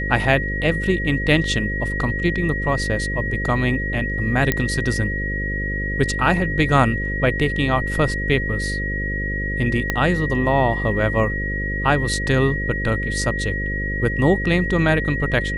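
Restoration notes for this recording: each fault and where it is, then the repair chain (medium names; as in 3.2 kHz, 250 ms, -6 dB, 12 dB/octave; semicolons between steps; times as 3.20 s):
buzz 50 Hz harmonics 11 -26 dBFS
whine 1.9 kHz -25 dBFS
4.52 s: pop -4 dBFS
9.90 s: pop -6 dBFS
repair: de-click; de-hum 50 Hz, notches 11; band-stop 1.9 kHz, Q 30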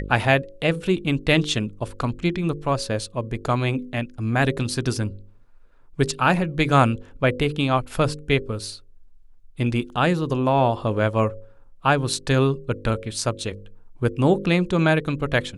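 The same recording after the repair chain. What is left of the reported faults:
9.90 s: pop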